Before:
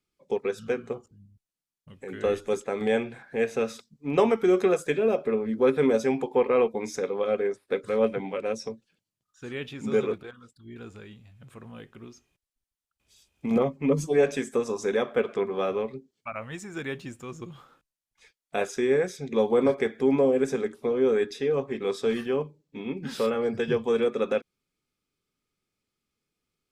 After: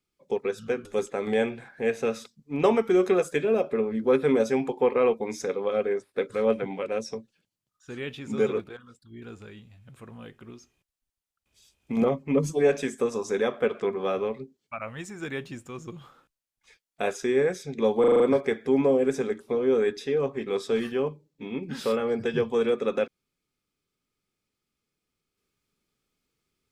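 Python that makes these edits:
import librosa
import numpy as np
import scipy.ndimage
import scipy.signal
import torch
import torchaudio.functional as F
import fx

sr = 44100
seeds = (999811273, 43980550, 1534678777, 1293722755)

y = fx.edit(x, sr, fx.cut(start_s=0.85, length_s=1.54),
    fx.stutter(start_s=19.54, slice_s=0.04, count=6), tone=tone)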